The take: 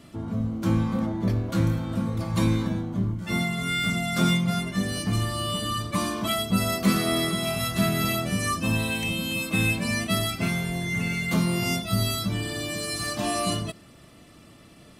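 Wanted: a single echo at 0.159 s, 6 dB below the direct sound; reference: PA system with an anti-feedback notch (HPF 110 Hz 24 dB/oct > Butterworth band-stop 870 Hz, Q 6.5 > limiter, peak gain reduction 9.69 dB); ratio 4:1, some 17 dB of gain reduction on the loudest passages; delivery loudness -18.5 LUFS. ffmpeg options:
-af "acompressor=threshold=-39dB:ratio=4,highpass=f=110:w=0.5412,highpass=f=110:w=1.3066,asuperstop=centerf=870:order=8:qfactor=6.5,aecho=1:1:159:0.501,volume=24.5dB,alimiter=limit=-10.5dB:level=0:latency=1"

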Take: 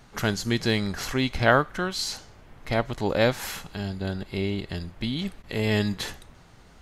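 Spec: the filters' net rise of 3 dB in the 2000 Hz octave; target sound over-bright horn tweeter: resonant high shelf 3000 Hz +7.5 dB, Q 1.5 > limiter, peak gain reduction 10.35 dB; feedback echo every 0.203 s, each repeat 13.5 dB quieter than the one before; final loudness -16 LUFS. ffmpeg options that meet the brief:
-af "equalizer=f=2k:t=o:g=6,highshelf=f=3k:t=q:w=1.5:g=7.5,aecho=1:1:203|406:0.211|0.0444,volume=9.5dB,alimiter=limit=-3dB:level=0:latency=1"

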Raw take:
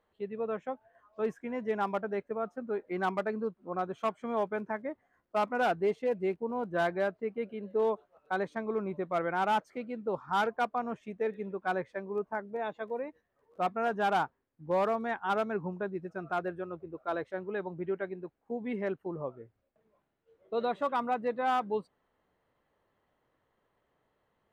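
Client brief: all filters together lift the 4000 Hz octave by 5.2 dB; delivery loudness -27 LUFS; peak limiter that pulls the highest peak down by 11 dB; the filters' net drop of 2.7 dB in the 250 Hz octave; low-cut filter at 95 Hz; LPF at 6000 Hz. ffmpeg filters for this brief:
-af "highpass=95,lowpass=6k,equalizer=f=250:t=o:g=-3.5,equalizer=f=4k:t=o:g=7.5,volume=12.5dB,alimiter=limit=-16dB:level=0:latency=1"

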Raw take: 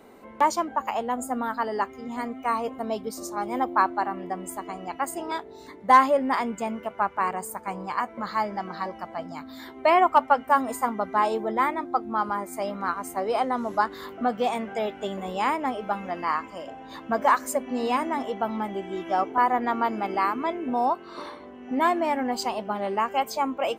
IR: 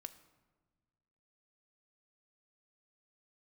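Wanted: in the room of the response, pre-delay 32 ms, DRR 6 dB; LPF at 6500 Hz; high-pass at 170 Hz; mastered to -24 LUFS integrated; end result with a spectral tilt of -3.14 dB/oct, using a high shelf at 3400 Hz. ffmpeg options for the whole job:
-filter_complex "[0:a]highpass=170,lowpass=6.5k,highshelf=f=3.4k:g=-7.5,asplit=2[a][b];[1:a]atrim=start_sample=2205,adelay=32[c];[b][c]afir=irnorm=-1:irlink=0,volume=-0.5dB[d];[a][d]amix=inputs=2:normalize=0,volume=2dB"

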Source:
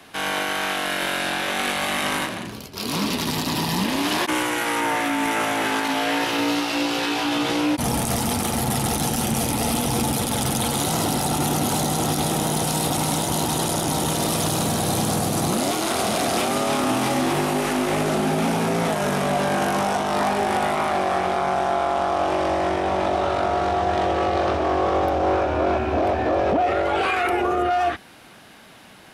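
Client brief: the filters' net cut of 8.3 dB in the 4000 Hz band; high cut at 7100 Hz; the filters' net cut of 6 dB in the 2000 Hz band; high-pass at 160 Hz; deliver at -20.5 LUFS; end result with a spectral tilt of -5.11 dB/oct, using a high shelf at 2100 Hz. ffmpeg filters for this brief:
-af "highpass=160,lowpass=7.1k,equalizer=f=2k:t=o:g=-4.5,highshelf=f=2.1k:g=-3.5,equalizer=f=4k:t=o:g=-5.5,volume=4dB"

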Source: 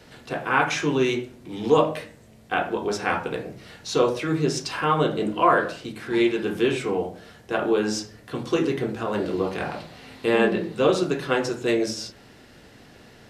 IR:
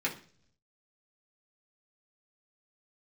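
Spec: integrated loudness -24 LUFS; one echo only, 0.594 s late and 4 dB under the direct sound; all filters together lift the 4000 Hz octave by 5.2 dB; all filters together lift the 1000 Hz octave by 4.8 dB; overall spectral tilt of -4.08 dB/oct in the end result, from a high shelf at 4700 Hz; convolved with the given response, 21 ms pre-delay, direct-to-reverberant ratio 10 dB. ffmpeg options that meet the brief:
-filter_complex "[0:a]equalizer=f=1k:t=o:g=5.5,equalizer=f=4k:t=o:g=4.5,highshelf=f=4.7k:g=4,aecho=1:1:594:0.631,asplit=2[a][b];[1:a]atrim=start_sample=2205,adelay=21[c];[b][c]afir=irnorm=-1:irlink=0,volume=-16.5dB[d];[a][d]amix=inputs=2:normalize=0,volume=-3dB"

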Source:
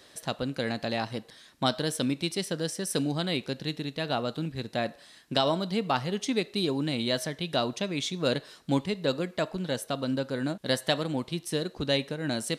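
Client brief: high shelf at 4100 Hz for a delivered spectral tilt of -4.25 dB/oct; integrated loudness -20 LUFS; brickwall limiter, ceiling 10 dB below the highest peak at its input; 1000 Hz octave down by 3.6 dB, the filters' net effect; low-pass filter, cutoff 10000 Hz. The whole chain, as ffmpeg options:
-af "lowpass=10k,equalizer=f=1k:t=o:g=-5.5,highshelf=f=4.1k:g=4.5,volume=12dB,alimiter=limit=-8dB:level=0:latency=1"

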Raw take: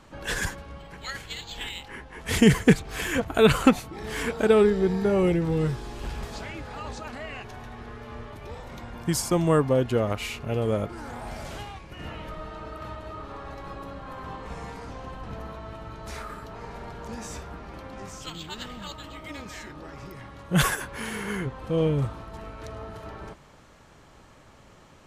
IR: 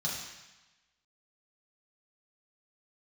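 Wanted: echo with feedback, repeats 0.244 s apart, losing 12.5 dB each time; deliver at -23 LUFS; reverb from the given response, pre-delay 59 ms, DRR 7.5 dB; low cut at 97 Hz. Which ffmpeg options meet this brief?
-filter_complex "[0:a]highpass=97,aecho=1:1:244|488|732:0.237|0.0569|0.0137,asplit=2[a][b];[1:a]atrim=start_sample=2205,adelay=59[c];[b][c]afir=irnorm=-1:irlink=0,volume=-12dB[d];[a][d]amix=inputs=2:normalize=0,volume=1.5dB"

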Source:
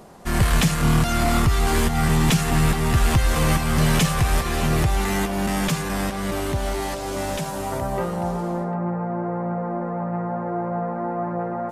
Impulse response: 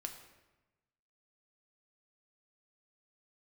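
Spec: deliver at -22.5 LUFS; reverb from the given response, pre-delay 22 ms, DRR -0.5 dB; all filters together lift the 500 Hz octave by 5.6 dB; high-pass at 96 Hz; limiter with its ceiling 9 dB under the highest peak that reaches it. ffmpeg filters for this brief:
-filter_complex "[0:a]highpass=96,equalizer=f=500:t=o:g=7.5,alimiter=limit=-14dB:level=0:latency=1,asplit=2[a][b];[1:a]atrim=start_sample=2205,adelay=22[c];[b][c]afir=irnorm=-1:irlink=0,volume=3dB[d];[a][d]amix=inputs=2:normalize=0,volume=-1.5dB"

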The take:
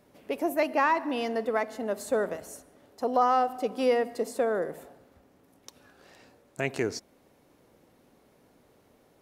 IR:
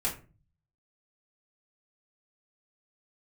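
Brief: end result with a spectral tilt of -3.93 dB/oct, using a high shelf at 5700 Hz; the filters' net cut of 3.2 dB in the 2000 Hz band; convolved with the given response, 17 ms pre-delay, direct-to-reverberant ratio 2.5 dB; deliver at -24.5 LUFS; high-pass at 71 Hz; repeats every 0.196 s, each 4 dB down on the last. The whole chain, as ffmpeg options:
-filter_complex "[0:a]highpass=71,equalizer=f=2k:t=o:g=-3,highshelf=f=5.7k:g=-8,aecho=1:1:196|392|588|784|980|1176|1372|1568|1764:0.631|0.398|0.25|0.158|0.0994|0.0626|0.0394|0.0249|0.0157,asplit=2[a][b];[1:a]atrim=start_sample=2205,adelay=17[c];[b][c]afir=irnorm=-1:irlink=0,volume=-8.5dB[d];[a][d]amix=inputs=2:normalize=0,volume=1dB"

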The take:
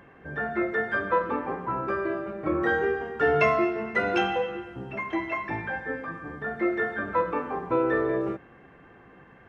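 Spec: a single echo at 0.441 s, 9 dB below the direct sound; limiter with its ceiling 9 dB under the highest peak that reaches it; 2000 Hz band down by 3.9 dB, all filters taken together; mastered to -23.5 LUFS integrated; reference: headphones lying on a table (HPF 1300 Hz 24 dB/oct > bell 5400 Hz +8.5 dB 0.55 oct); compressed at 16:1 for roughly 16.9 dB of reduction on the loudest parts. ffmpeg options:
-af "equalizer=f=2k:t=o:g=-4.5,acompressor=threshold=-36dB:ratio=16,alimiter=level_in=10dB:limit=-24dB:level=0:latency=1,volume=-10dB,highpass=f=1.3k:w=0.5412,highpass=f=1.3k:w=1.3066,equalizer=f=5.4k:t=o:w=0.55:g=8.5,aecho=1:1:441:0.355,volume=26dB"

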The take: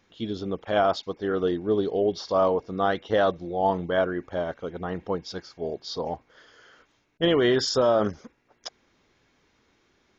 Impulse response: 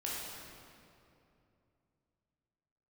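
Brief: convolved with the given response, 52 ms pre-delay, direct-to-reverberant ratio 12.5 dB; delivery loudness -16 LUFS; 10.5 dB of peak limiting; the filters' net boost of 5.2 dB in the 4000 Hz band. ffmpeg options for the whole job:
-filter_complex "[0:a]equalizer=f=4k:t=o:g=7,alimiter=limit=-20dB:level=0:latency=1,asplit=2[a][b];[1:a]atrim=start_sample=2205,adelay=52[c];[b][c]afir=irnorm=-1:irlink=0,volume=-15.5dB[d];[a][d]amix=inputs=2:normalize=0,volume=14.5dB"

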